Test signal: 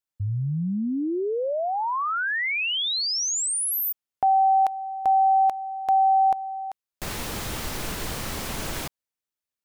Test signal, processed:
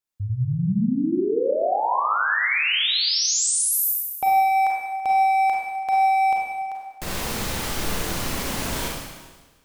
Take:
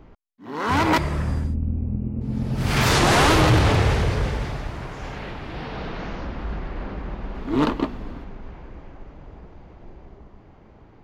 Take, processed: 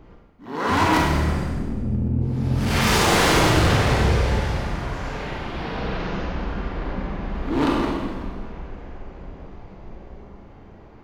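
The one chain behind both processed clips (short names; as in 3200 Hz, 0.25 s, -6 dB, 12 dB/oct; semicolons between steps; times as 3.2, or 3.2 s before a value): overloaded stage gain 19 dB; Schroeder reverb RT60 1.3 s, combs from 32 ms, DRR -2 dB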